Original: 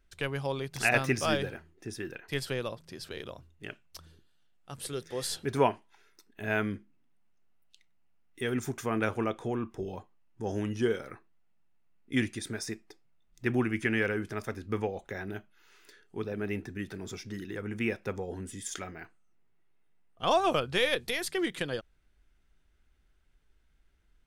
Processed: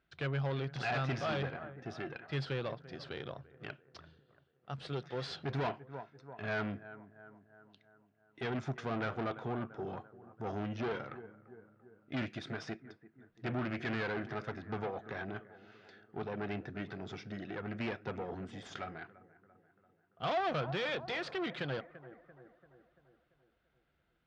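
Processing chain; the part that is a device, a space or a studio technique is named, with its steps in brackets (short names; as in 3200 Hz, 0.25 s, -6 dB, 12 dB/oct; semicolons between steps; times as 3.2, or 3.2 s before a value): analogue delay pedal into a guitar amplifier (analogue delay 0.34 s, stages 4096, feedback 55%, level -19.5 dB; tube stage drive 34 dB, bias 0.6; speaker cabinet 92–4400 Hz, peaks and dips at 140 Hz +8 dB, 710 Hz +6 dB, 1400 Hz +5 dB)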